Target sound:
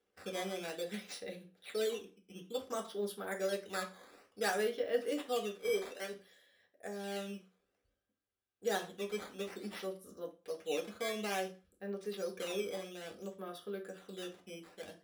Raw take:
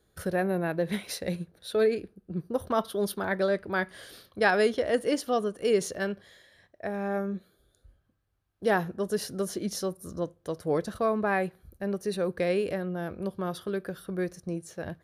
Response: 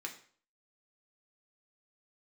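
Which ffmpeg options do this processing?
-filter_complex "[0:a]asettb=1/sr,asplit=3[s0][s1][s2];[s0]atrim=end=5.584[s3];[s1]atrim=start=5.58:end=6.13,asetpts=PTS-STARTPTS,afade=t=in:d=0.004:c=qsin,afade=t=out:st=0.546:d=0.004:c=qsin,highpass=300[s4];[s2]atrim=start=6.126[s5];[s3][s4]acrossfade=d=0.004:c1=hsin:c2=qsin[s6];[s6][s5]acrossfade=d=0.004:c1=qsin:c2=hsin,acrusher=samples=9:mix=1:aa=0.000001:lfo=1:lforange=14.4:lforate=0.57[s7];[1:a]atrim=start_sample=2205,asetrate=66150,aresample=44100[s8];[s7][s8]afir=irnorm=-1:irlink=0,volume=0.562"

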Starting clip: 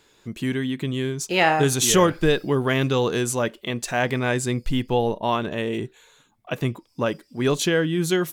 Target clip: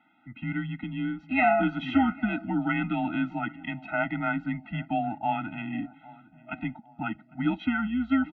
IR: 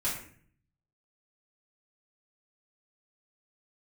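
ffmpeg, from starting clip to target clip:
-filter_complex "[0:a]highpass=f=320:t=q:w=0.5412,highpass=f=320:t=q:w=1.307,lowpass=f=2700:t=q:w=0.5176,lowpass=f=2700:t=q:w=0.7071,lowpass=f=2700:t=q:w=1.932,afreqshift=-100,asplit=2[s0][s1];[s1]adelay=802,lowpass=f=1200:p=1,volume=0.1,asplit=2[s2][s3];[s3]adelay=802,lowpass=f=1200:p=1,volume=0.52,asplit=2[s4][s5];[s5]adelay=802,lowpass=f=1200:p=1,volume=0.52,asplit=2[s6][s7];[s7]adelay=802,lowpass=f=1200:p=1,volume=0.52[s8];[s0][s2][s4][s6][s8]amix=inputs=5:normalize=0,afftfilt=real='re*eq(mod(floor(b*sr/1024/310),2),0)':imag='im*eq(mod(floor(b*sr/1024/310),2),0)':win_size=1024:overlap=0.75"

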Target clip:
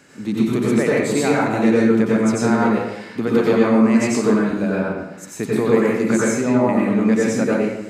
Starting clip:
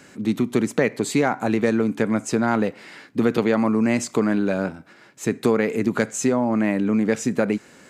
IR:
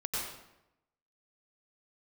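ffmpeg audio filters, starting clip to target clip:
-filter_complex "[0:a]asettb=1/sr,asplit=3[s0][s1][s2];[s0]atrim=end=4.404[s3];[s1]atrim=start=4.4:end=6.69,asetpts=PTS-STARTPTS,afade=t=in:d=0.004:c=qsin,afade=t=out:st=2.286:d=0.004:c=qsin,acrossover=split=4100[s4][s5];[s4]adelay=130[s6];[s6][s5]amix=inputs=2:normalize=0,atrim=end_sample=100989[s7];[s2]atrim=start=6.686[s8];[s3][s7]acrossfade=d=0.004:c1=hsin:c2=qsin[s9];[s9][s8]acrossfade=d=0.004:c1=qsin:c2=hsin[s10];[1:a]atrim=start_sample=2205[s11];[s10][s11]afir=irnorm=-1:irlink=0,volume=0.891"

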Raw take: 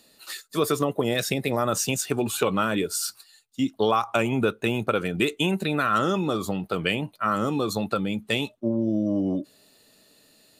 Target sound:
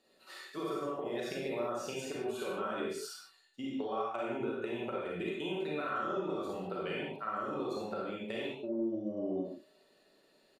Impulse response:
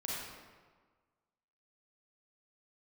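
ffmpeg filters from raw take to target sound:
-filter_complex "[0:a]lowpass=f=1700:p=1,lowshelf=f=260:t=q:w=1.5:g=-8,aecho=1:1:5.3:0.4,acompressor=threshold=0.0398:ratio=6[s0];[1:a]atrim=start_sample=2205,afade=t=out:st=0.26:d=0.01,atrim=end_sample=11907[s1];[s0][s1]afir=irnorm=-1:irlink=0,volume=0.501"

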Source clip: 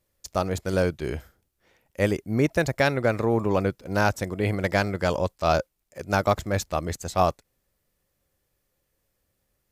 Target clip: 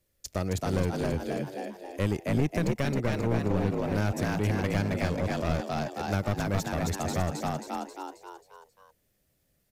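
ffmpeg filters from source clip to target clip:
-filter_complex "[0:a]equalizer=f=980:t=o:w=1:g=-6.5,asplit=7[s0][s1][s2][s3][s4][s5][s6];[s1]adelay=268,afreqshift=65,volume=0.708[s7];[s2]adelay=536,afreqshift=130,volume=0.339[s8];[s3]adelay=804,afreqshift=195,volume=0.162[s9];[s4]adelay=1072,afreqshift=260,volume=0.0785[s10];[s5]adelay=1340,afreqshift=325,volume=0.0376[s11];[s6]adelay=1608,afreqshift=390,volume=0.018[s12];[s0][s7][s8][s9][s10][s11][s12]amix=inputs=7:normalize=0,aeval=exprs='clip(val(0),-1,0.0596)':c=same,acrossover=split=240[s13][s14];[s14]acompressor=threshold=0.0355:ratio=6[s15];[s13][s15]amix=inputs=2:normalize=0"

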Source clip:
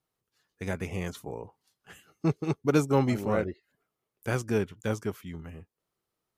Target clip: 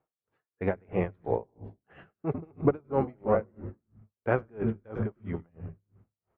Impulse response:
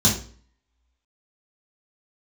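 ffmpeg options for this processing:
-filter_complex "[0:a]lowpass=f=2300:w=0.5412,lowpass=f=2300:w=1.3066,equalizer=f=600:t=o:w=1.9:g=10,acompressor=threshold=0.0708:ratio=10,asplit=6[s0][s1][s2][s3][s4][s5];[s1]adelay=100,afreqshift=-66,volume=0.211[s6];[s2]adelay=200,afreqshift=-132,volume=0.104[s7];[s3]adelay=300,afreqshift=-198,volume=0.0507[s8];[s4]adelay=400,afreqshift=-264,volume=0.0248[s9];[s5]adelay=500,afreqshift=-330,volume=0.0122[s10];[s0][s6][s7][s8][s9][s10]amix=inputs=6:normalize=0,dynaudnorm=f=130:g=9:m=1.41,asplit=2[s11][s12];[s12]equalizer=f=120:t=o:w=1:g=9.5[s13];[1:a]atrim=start_sample=2205,adelay=131[s14];[s13][s14]afir=irnorm=-1:irlink=0,volume=0.0188[s15];[s11][s15]amix=inputs=2:normalize=0,aeval=exprs='val(0)*pow(10,-35*(0.5-0.5*cos(2*PI*3*n/s))/20)':c=same,volume=1.26"

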